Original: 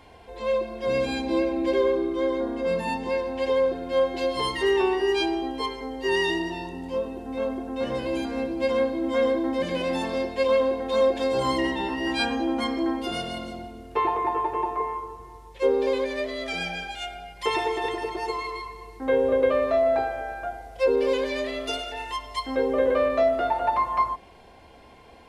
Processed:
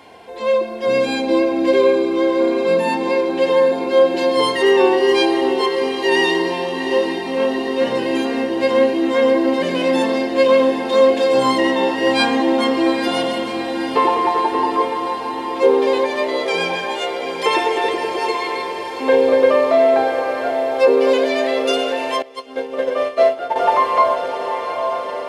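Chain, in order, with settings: high-pass 190 Hz 12 dB/octave; on a send: echo that smears into a reverb 764 ms, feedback 72%, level -8.5 dB; 22.22–23.56 s: on the sum: upward expansion 2.5:1, over -30 dBFS; trim +8 dB

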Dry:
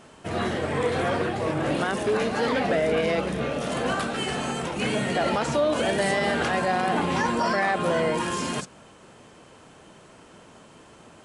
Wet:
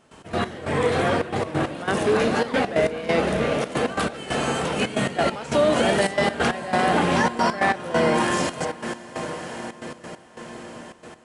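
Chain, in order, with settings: echo that smears into a reverb 605 ms, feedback 60%, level -8.5 dB; trance gate ".x.x..xxxxx" 136 bpm -12 dB; trim +3.5 dB

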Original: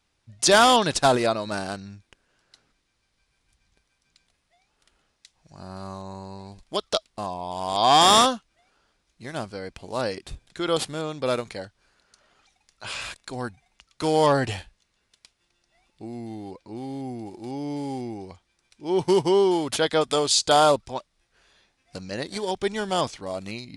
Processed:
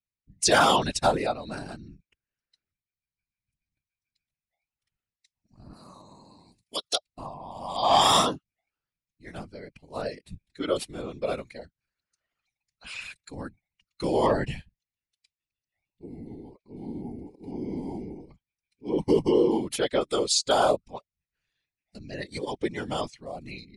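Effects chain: expander on every frequency bin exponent 1.5; whisper effect; in parallel at -3 dB: compression, threshold -32 dBFS, peak gain reduction 17.5 dB; 5.73–6.96 s: on the sum: RIAA curve recording; trim -2.5 dB

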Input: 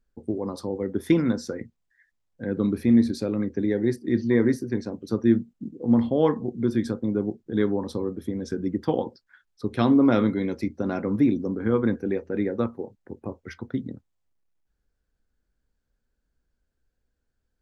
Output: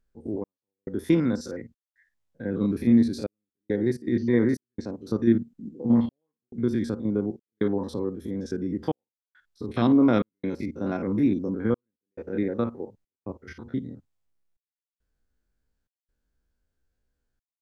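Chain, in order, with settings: spectrogram pixelated in time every 50 ms; trance gate "xx..xxxx.xxxx" 69 bpm -60 dB

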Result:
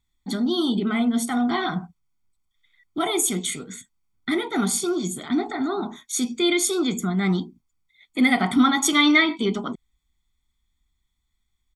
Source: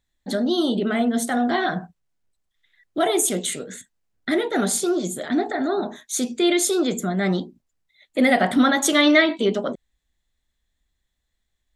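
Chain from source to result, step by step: comb 0.9 ms, depth 87%; trim -3 dB

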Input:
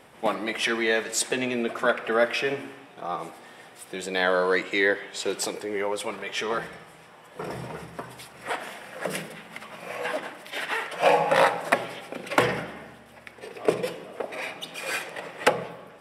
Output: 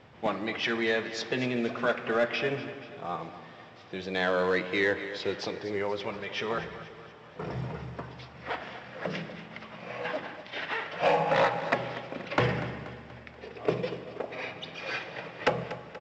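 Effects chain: steep low-pass 5.3 kHz 36 dB/octave; peaking EQ 95 Hz +13.5 dB 1.4 oct; in parallel at -10.5 dB: wavefolder -16.5 dBFS; on the sum: feedback delay 240 ms, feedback 51%, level -14 dB; on a send at -20 dB: reverberation RT60 3.1 s, pre-delay 118 ms; on the sum: trim -6.5 dB; µ-law 128 kbps 16 kHz

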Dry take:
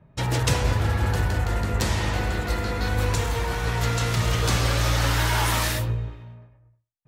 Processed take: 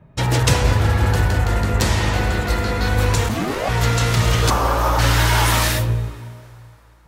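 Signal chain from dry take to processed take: 3.28–3.68 s: ring modulator 140 Hz -> 700 Hz; 4.50–4.99 s: ten-band graphic EQ 125 Hz -11 dB, 1 kHz +11 dB, 2 kHz -9 dB, 4 kHz -9 dB, 8 kHz -8 dB; plate-style reverb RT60 4.3 s, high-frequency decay 0.75×, DRR 20 dB; trim +6 dB

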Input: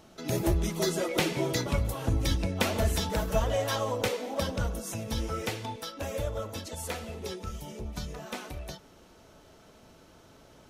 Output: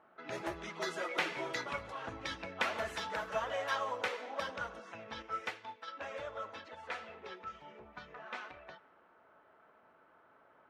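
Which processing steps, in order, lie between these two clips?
band-pass filter 1.5 kHz, Q 1.3; level-controlled noise filter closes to 1.3 kHz, open at -36 dBFS; 5.22–5.88 s: upward expansion 1.5:1, over -52 dBFS; trim +1 dB

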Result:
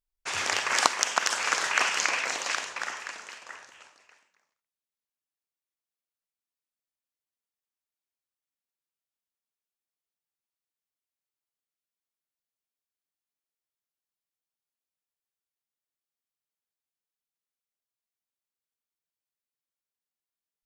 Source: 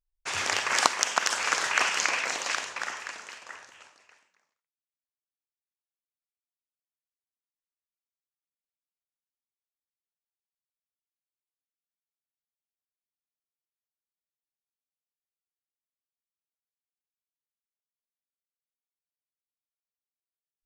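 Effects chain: bass shelf 99 Hz -5 dB

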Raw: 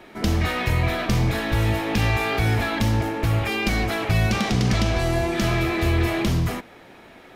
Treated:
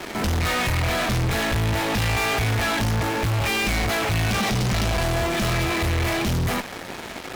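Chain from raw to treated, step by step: in parallel at -11 dB: fuzz box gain 50 dB, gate -44 dBFS; on the sum: dynamic bell 330 Hz, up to -6 dB, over -34 dBFS, Q 1.7; saturation -19.5 dBFS, distortion -12 dB

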